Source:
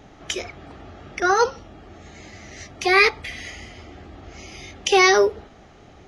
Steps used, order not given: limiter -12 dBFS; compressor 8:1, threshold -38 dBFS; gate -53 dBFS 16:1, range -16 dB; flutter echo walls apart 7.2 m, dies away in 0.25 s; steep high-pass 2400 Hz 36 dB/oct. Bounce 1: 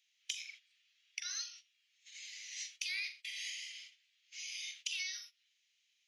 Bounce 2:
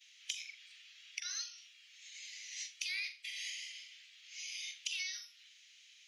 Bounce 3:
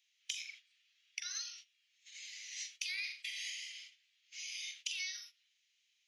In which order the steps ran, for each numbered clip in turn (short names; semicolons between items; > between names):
steep high-pass > limiter > flutter echo > compressor > gate; gate > steep high-pass > limiter > flutter echo > compressor; flutter echo > limiter > steep high-pass > compressor > gate